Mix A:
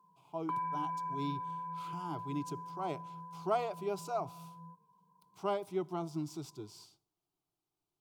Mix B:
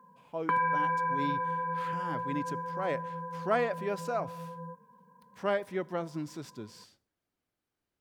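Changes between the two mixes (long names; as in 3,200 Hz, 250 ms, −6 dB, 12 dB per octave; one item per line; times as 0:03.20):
background +7.0 dB
master: remove phaser with its sweep stopped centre 350 Hz, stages 8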